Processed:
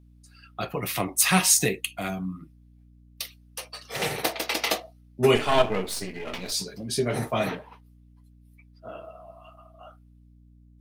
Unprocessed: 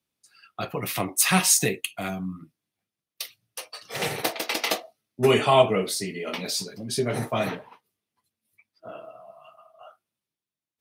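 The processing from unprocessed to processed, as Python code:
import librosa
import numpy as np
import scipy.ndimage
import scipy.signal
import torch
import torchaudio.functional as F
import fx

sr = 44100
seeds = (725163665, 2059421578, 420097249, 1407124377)

y = fx.halfwave_gain(x, sr, db=-12.0, at=(5.35, 6.52))
y = fx.add_hum(y, sr, base_hz=60, snr_db=25)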